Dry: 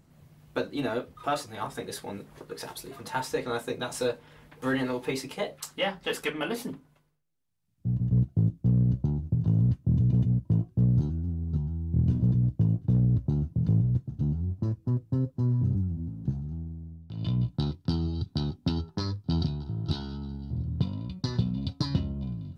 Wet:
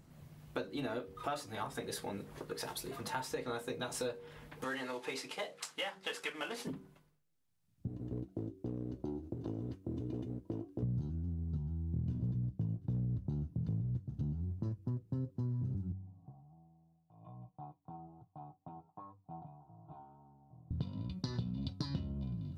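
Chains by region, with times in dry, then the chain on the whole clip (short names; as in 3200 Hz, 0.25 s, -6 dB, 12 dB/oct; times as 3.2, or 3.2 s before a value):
4.64–6.67 CVSD 64 kbps + HPF 770 Hz 6 dB/oct + high shelf 10000 Hz -11.5 dB
7.87–10.83 resonant low shelf 230 Hz -11 dB, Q 3 + short-mantissa float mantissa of 8-bit
15.92–20.71 vocal tract filter a + comb 6.5 ms, depth 71%
whole clip: de-hum 95.36 Hz, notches 5; compressor 3:1, threshold -38 dBFS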